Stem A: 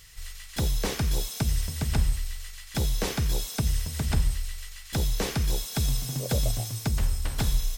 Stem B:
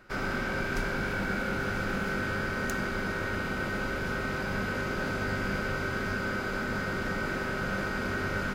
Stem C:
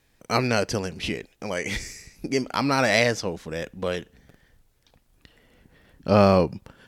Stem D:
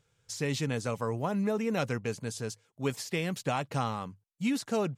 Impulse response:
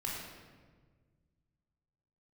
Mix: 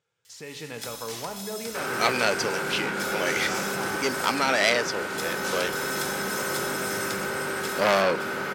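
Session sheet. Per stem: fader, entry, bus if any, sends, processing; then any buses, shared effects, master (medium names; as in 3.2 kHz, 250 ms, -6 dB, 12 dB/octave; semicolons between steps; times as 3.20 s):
+1.0 dB, 0.25 s, bus A, send -18.5 dB, echo send -19.5 dB, pre-emphasis filter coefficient 0.9
-6.0 dB, 1.65 s, no bus, send -4 dB, no echo send, band-stop 680 Hz; slew-rate limiter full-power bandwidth 19 Hz
-7.5 dB, 1.70 s, no bus, no send, no echo send, none
-5.0 dB, 0.00 s, bus A, send -15 dB, no echo send, none
bus A: 0.0 dB, tilt EQ -2 dB/octave; compression, threshold -39 dBFS, peak gain reduction 14 dB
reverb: on, RT60 1.5 s, pre-delay 17 ms
echo: delay 568 ms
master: frequency weighting A; level rider gain up to 10.5 dB; transformer saturation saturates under 2.6 kHz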